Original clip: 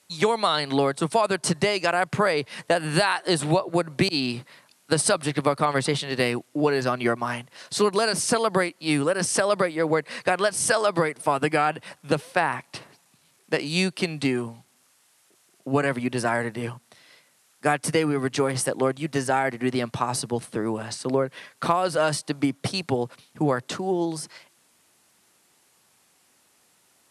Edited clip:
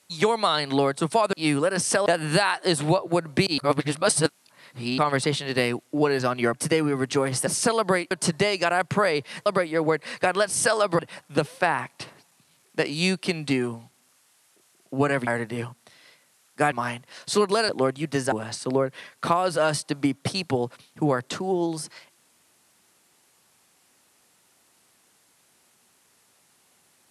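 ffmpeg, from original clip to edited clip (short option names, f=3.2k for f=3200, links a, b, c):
-filter_complex "[0:a]asplit=14[a][b][c][d][e][f][g][h][i][j][k][l][m][n];[a]atrim=end=1.332[o];[b]atrim=start=8.768:end=9.502[p];[c]atrim=start=2.678:end=4.202[q];[d]atrim=start=4.198:end=5.602,asetpts=PTS-STARTPTS,areverse[r];[e]atrim=start=5.598:end=7.162[s];[f]atrim=start=17.768:end=18.702[t];[g]atrim=start=8.128:end=8.772[u];[h]atrim=start=1.328:end=2.682[v];[i]atrim=start=9.498:end=11.032[w];[j]atrim=start=11.728:end=16.012[x];[k]atrim=start=16.318:end=17.772[y];[l]atrim=start=7.158:end=8.132[z];[m]atrim=start=18.698:end=19.332[aa];[n]atrim=start=20.708[ab];[o][p]acrossfade=d=0.004:c1=hsin:c2=hsin[ac];[ac][q]acrossfade=d=0.004:c1=hsin:c2=hsin[ad];[ad][r]acrossfade=d=0.004:c1=hsin:c2=hsin[ae];[ae][s]acrossfade=d=0.004:c1=hsin:c2=hsin[af];[af][t]acrossfade=d=0.004:c1=hsin:c2=hsin[ag];[ag][u]acrossfade=d=0.004:c1=hsin:c2=hsin[ah];[ah][v]acrossfade=d=0.004:c1=hsin:c2=hsin[ai];[ai][w]acrossfade=d=0.004:c1=hsin:c2=hsin[aj];[aj][x]acrossfade=d=0.004:c1=hsin:c2=hsin[ak];[ak][y]acrossfade=d=0.004:c1=hsin:c2=hsin[al];[al][z]acrossfade=d=0.004:c1=hsin:c2=hsin[am];[am][aa]acrossfade=d=0.004:c1=hsin:c2=hsin[an];[an][ab]acrossfade=d=0.004:c1=hsin:c2=hsin"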